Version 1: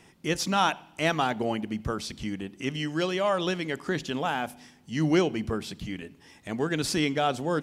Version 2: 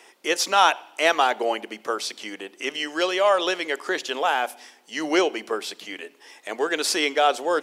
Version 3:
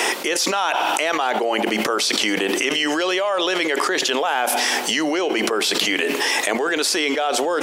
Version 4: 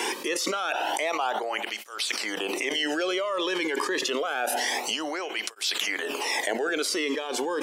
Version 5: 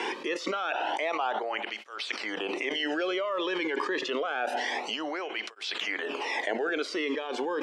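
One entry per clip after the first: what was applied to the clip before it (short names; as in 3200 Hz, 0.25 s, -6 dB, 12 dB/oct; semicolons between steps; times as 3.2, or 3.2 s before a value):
HPF 400 Hz 24 dB/oct; gain +7 dB
fast leveller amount 100%; gain -6 dB
tape flanging out of phase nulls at 0.27 Hz, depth 1.6 ms; gain -5 dB
BPF 110–3300 Hz; gain -2 dB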